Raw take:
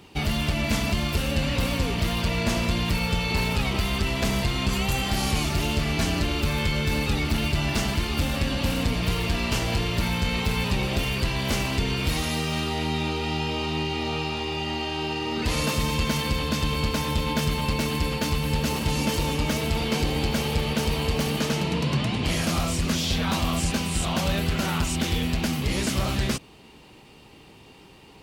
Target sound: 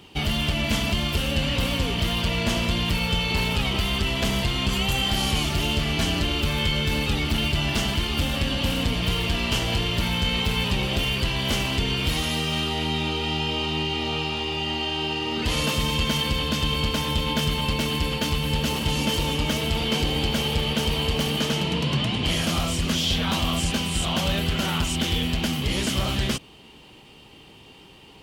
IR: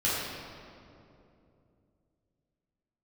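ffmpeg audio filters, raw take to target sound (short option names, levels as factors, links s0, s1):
-af "equalizer=f=3100:t=o:w=0.25:g=9"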